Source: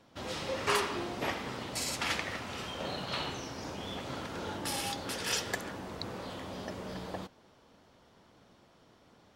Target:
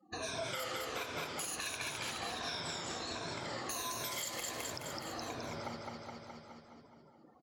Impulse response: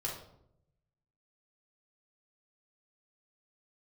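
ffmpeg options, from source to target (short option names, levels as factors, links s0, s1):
-filter_complex "[0:a]afftfilt=real='re*pow(10,15/40*sin(2*PI*(1.6*log(max(b,1)*sr/1024/100)/log(2)-(-1.1)*(pts-256)/sr)))':imag='im*pow(10,15/40*sin(2*PI*(1.6*log(max(b,1)*sr/1024/100)/log(2)-(-1.1)*(pts-256)/sr)))':win_size=1024:overlap=0.75,afftdn=nr=34:nf=-50,highshelf=f=2900:g=4,asplit=2[s0][s1];[s1]aecho=0:1:1042:0.0631[s2];[s0][s2]amix=inputs=2:normalize=0,asetrate=55566,aresample=44100,asplit=2[s3][s4];[s4]aecho=0:1:210|420|630|840|1050|1260|1470:0.562|0.309|0.17|0.0936|0.0515|0.0283|0.0156[s5];[s3][s5]amix=inputs=2:normalize=0,alimiter=limit=0.0841:level=0:latency=1:release=167,acompressor=threshold=0.00501:ratio=2,adynamicequalizer=threshold=0.00112:dfrequency=190:dqfactor=1:tfrequency=190:tqfactor=1:attack=5:release=100:ratio=0.375:range=1.5:mode=cutabove:tftype=bell,volume=1.26"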